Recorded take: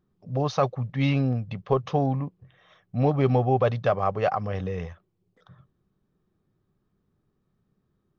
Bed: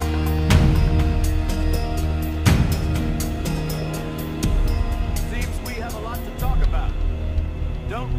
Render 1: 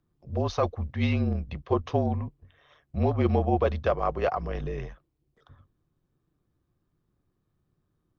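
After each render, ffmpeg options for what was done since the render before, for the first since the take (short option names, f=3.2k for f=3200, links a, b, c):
-af "tremolo=f=150:d=0.462,afreqshift=-38"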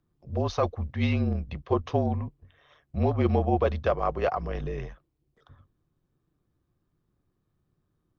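-af anull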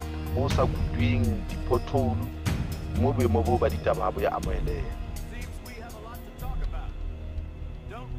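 -filter_complex "[1:a]volume=-12dB[a];[0:a][a]amix=inputs=2:normalize=0"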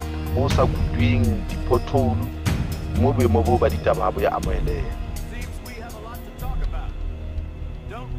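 -af "volume=5.5dB"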